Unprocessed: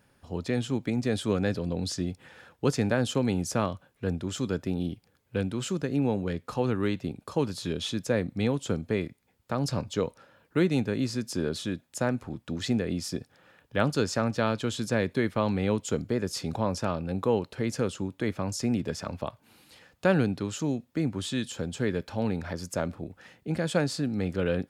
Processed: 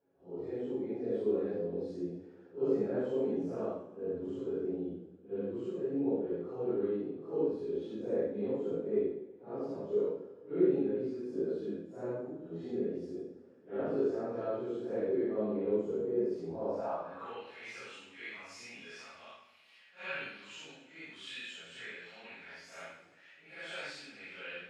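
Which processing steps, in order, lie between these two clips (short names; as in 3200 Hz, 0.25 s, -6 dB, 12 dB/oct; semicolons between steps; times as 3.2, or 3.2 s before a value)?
phase scrambler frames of 0.2 s; band-pass sweep 400 Hz -> 2400 Hz, 16.58–17.46; two-slope reverb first 0.52 s, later 2.3 s, from -18 dB, DRR -6 dB; gain -7 dB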